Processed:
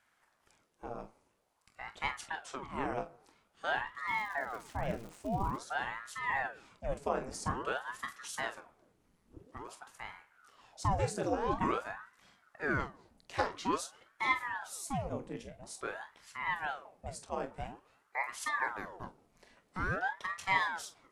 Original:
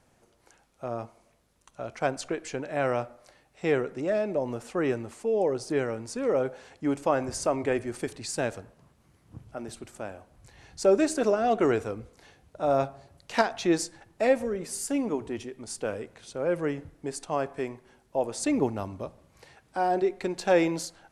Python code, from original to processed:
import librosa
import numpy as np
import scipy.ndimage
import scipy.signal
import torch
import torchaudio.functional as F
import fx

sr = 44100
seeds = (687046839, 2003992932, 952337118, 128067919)

y = fx.room_early_taps(x, sr, ms=(25, 45), db=(-10.5, -11.5))
y = fx.dmg_crackle(y, sr, seeds[0], per_s=300.0, level_db=-35.0, at=(4.07, 5.56), fade=0.02)
y = fx.ring_lfo(y, sr, carrier_hz=820.0, swing_pct=90, hz=0.49)
y = y * 10.0 ** (-6.5 / 20.0)